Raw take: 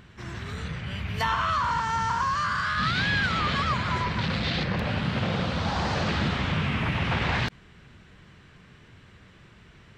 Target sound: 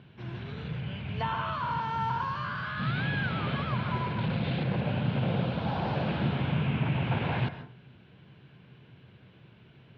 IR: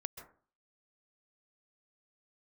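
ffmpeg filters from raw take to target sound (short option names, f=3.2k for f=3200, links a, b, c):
-filter_complex "[0:a]highpass=120,equalizer=f=130:t=q:w=4:g=8,equalizer=f=1.2k:t=q:w=4:g=-9,equalizer=f=1.9k:t=q:w=4:g=-10,lowpass=f=3.5k:w=0.5412,lowpass=f=3.5k:w=1.3066,asplit=2[a][b];[1:a]atrim=start_sample=2205[c];[b][c]afir=irnorm=-1:irlink=0,volume=4dB[d];[a][d]amix=inputs=2:normalize=0,acrossover=split=2700[e][f];[f]acompressor=threshold=-40dB:ratio=4:attack=1:release=60[g];[e][g]amix=inputs=2:normalize=0,volume=-8.5dB"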